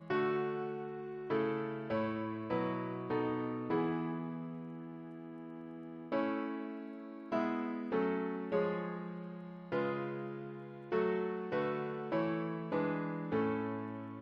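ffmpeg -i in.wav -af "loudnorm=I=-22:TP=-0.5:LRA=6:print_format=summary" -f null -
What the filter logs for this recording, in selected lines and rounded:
Input Integrated:    -37.5 LUFS
Input True Peak:     -20.8 dBTP
Input LRA:             2.8 LU
Input Threshold:     -47.8 LUFS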